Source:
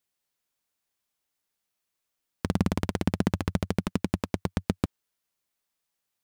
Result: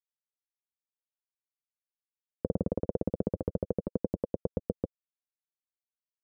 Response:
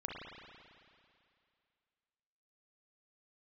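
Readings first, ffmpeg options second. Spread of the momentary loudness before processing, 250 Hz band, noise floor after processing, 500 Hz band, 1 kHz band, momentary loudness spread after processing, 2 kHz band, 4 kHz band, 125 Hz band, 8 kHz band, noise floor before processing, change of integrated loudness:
5 LU, −6.0 dB, below −85 dBFS, +2.5 dB, −12.0 dB, 6 LU, below −25 dB, below −35 dB, −7.5 dB, below −35 dB, −83 dBFS, −4.5 dB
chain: -af "aeval=exprs='sgn(val(0))*max(abs(val(0))-0.0112,0)':channel_layout=same,lowpass=frequency=510:width_type=q:width=4.9,alimiter=limit=-15.5dB:level=0:latency=1:release=437"

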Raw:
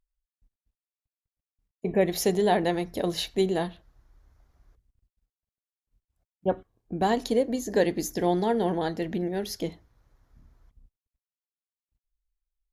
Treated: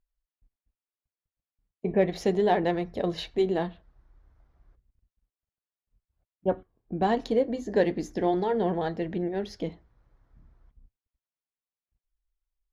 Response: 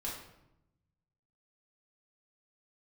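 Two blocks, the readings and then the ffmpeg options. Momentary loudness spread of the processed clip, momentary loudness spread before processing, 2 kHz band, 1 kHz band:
11 LU, 10 LU, −1.5 dB, −0.5 dB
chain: -af "flanger=delay=1.6:depth=4.5:regen=-74:speed=0.34:shape=sinusoidal,adynamicsmooth=sensitivity=1:basefreq=3500,volume=4dB"

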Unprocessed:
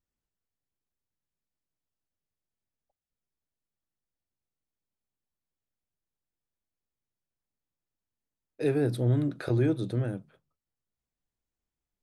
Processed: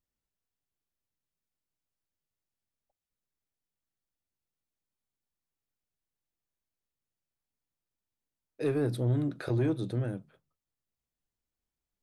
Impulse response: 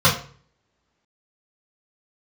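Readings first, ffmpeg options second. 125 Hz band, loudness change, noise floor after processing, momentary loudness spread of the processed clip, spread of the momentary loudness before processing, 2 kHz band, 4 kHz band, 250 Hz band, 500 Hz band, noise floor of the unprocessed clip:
−2.5 dB, −2.5 dB, below −85 dBFS, 6 LU, 6 LU, −2.5 dB, −2.0 dB, −2.5 dB, −3.0 dB, below −85 dBFS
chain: -af "asoftclip=type=tanh:threshold=-18dB,volume=-1.5dB"

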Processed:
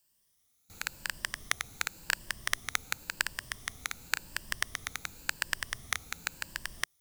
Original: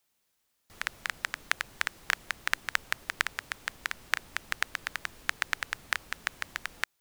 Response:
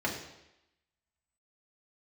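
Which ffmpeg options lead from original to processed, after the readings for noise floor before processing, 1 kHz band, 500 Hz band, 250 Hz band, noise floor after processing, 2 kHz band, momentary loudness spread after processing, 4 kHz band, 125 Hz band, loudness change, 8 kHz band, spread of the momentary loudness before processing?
−77 dBFS, −4.0 dB, −3.5 dB, +0.5 dB, −73 dBFS, −3.5 dB, 6 LU, 0.0 dB, +4.0 dB, −2.0 dB, +4.0 dB, 6 LU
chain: -af "afftfilt=real='re*pow(10,9/40*sin(2*PI*(1.3*log(max(b,1)*sr/1024/100)/log(2)-(0.92)*(pts-256)/sr)))':imag='im*pow(10,9/40*sin(2*PI*(1.3*log(max(b,1)*sr/1024/100)/log(2)-(0.92)*(pts-256)/sr)))':win_size=1024:overlap=0.75,bass=frequency=250:gain=9,treble=frequency=4000:gain=9,volume=-5dB"

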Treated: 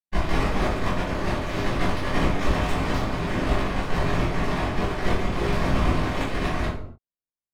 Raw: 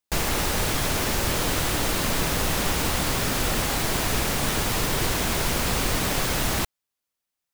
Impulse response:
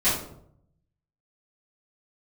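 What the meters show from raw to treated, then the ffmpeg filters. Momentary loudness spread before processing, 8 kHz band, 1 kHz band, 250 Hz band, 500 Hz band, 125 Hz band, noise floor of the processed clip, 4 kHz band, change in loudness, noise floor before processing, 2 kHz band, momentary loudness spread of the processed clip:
0 LU, −17.5 dB, +0.5 dB, +2.5 dB, +1.5 dB, +2.0 dB, below −85 dBFS, −8.5 dB, −2.0 dB, −85 dBFS, −2.0 dB, 3 LU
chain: -filter_complex "[0:a]flanger=delay=19:depth=3.5:speed=0.34,adynamicsmooth=sensitivity=2.5:basefreq=1000,aeval=exprs='0.158*(cos(1*acos(clip(val(0)/0.158,-1,1)))-cos(1*PI/2))+0.0447*(cos(3*acos(clip(val(0)/0.158,-1,1)))-cos(3*PI/2))+0.0316*(cos(6*acos(clip(val(0)/0.158,-1,1)))-cos(6*PI/2))+0.0158*(cos(8*acos(clip(val(0)/0.158,-1,1)))-cos(8*PI/2))':channel_layout=same[link_01];[1:a]atrim=start_sample=2205,afade=type=out:start_time=0.36:duration=0.01,atrim=end_sample=16317[link_02];[link_01][link_02]afir=irnorm=-1:irlink=0,volume=-5dB"

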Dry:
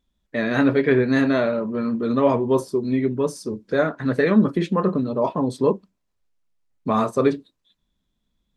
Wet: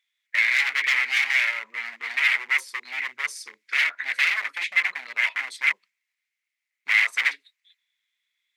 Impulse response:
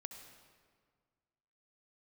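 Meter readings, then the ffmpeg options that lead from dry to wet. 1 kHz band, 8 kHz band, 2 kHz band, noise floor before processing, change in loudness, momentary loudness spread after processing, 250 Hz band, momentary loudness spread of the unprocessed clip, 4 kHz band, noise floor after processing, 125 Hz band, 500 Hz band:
−10.0 dB, +4.5 dB, +10.5 dB, −75 dBFS, −1.5 dB, 11 LU, below −40 dB, 7 LU, +10.0 dB, −84 dBFS, below −40 dB, below −30 dB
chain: -af "aeval=exprs='0.0891*(abs(mod(val(0)/0.0891+3,4)-2)-1)':channel_layout=same,highpass=frequency=2100:width_type=q:width=7.8"

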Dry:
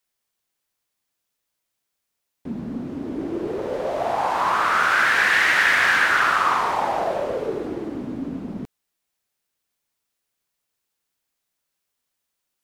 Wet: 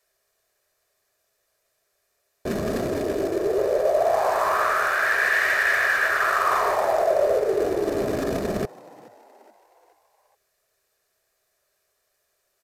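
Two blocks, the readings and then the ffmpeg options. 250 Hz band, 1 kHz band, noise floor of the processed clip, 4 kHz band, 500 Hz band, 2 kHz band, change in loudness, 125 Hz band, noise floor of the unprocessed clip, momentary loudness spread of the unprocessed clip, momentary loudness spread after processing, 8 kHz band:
−1.0 dB, −2.5 dB, −73 dBFS, −7.0 dB, +6.0 dB, −3.0 dB, −1.5 dB, +1.5 dB, −80 dBFS, 15 LU, 8 LU, −1.0 dB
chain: -filter_complex "[0:a]acrusher=bits=3:mode=log:mix=0:aa=0.000001,equalizer=frequency=160:width_type=o:width=0.33:gain=-8,equalizer=frequency=250:width_type=o:width=0.33:gain=-8,equalizer=frequency=400:width_type=o:width=0.33:gain=11,equalizer=frequency=630:width_type=o:width=0.33:gain=10,equalizer=frequency=1600:width_type=o:width=0.33:gain=6,equalizer=frequency=3150:width_type=o:width=0.33:gain=-6,equalizer=frequency=10000:width_type=o:width=0.33:gain=-3,areverse,acompressor=threshold=-27dB:ratio=8,areverse,aecho=1:1:1.7:0.37,asplit=2[link_01][link_02];[link_02]asplit=4[link_03][link_04][link_05][link_06];[link_03]adelay=423,afreqshift=100,volume=-22dB[link_07];[link_04]adelay=846,afreqshift=200,volume=-27.8dB[link_08];[link_05]adelay=1269,afreqshift=300,volume=-33.7dB[link_09];[link_06]adelay=1692,afreqshift=400,volume=-39.5dB[link_10];[link_07][link_08][link_09][link_10]amix=inputs=4:normalize=0[link_11];[link_01][link_11]amix=inputs=2:normalize=0,aresample=32000,aresample=44100,volume=7.5dB"

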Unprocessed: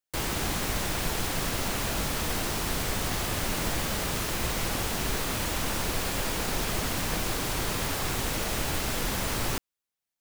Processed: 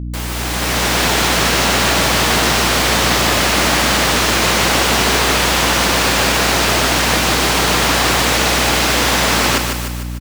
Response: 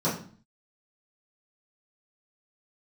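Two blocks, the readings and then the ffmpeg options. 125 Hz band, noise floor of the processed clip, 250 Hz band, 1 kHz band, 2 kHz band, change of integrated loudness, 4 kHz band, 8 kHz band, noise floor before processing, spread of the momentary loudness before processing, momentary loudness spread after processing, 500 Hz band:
+12.0 dB, −22 dBFS, +14.0 dB, +17.5 dB, +18.5 dB, +16.0 dB, +18.0 dB, +14.5 dB, below −85 dBFS, 0 LU, 3 LU, +16.0 dB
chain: -filter_complex "[0:a]dynaudnorm=framelen=260:gausssize=5:maxgain=14.5dB,highpass=220,equalizer=frequency=340:width_type=o:width=2:gain=-3.5,asplit=2[link_01][link_02];[link_02]aecho=0:1:150|300|450|600|750|900:0.501|0.256|0.13|0.0665|0.0339|0.0173[link_03];[link_01][link_03]amix=inputs=2:normalize=0,aeval=exprs='val(0)+0.0447*(sin(2*PI*60*n/s)+sin(2*PI*2*60*n/s)/2+sin(2*PI*3*60*n/s)/3+sin(2*PI*4*60*n/s)/4+sin(2*PI*5*60*n/s)/5)':channel_layout=same,acrossover=split=7000[link_04][link_05];[link_05]acompressor=threshold=-29dB:ratio=4:attack=1:release=60[link_06];[link_04][link_06]amix=inputs=2:normalize=0,volume=4.5dB"

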